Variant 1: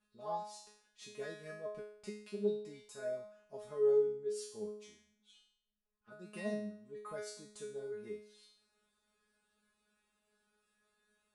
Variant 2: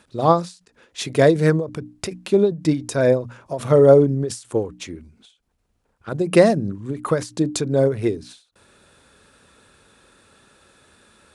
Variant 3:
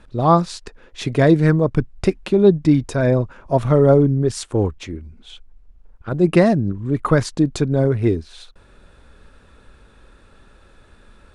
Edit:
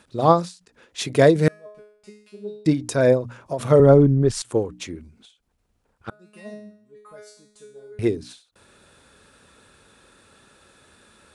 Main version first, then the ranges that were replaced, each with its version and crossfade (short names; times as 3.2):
2
1.48–2.66 from 1
3.8–4.42 from 3
6.1–7.99 from 1